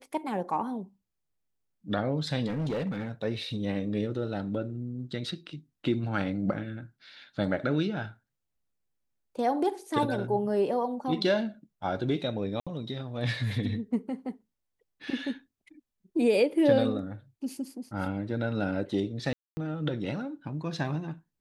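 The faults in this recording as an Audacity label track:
2.470000	3.110000	clipped -27 dBFS
12.600000	12.670000	gap 66 ms
19.330000	19.570000	gap 0.24 s

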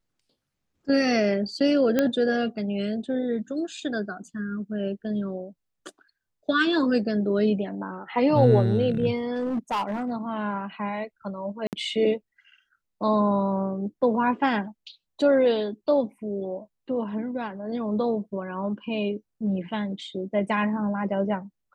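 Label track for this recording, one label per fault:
1.990000	1.990000	pop -9 dBFS
9.340000	10.110000	clipped -23 dBFS
11.670000	11.730000	gap 58 ms

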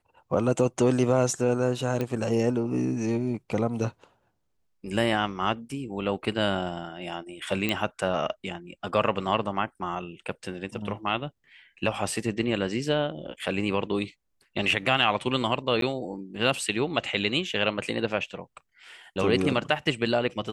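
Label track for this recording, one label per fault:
2.010000	2.010000	pop -16 dBFS
7.690000	7.690000	pop -12 dBFS
15.810000	15.820000	gap

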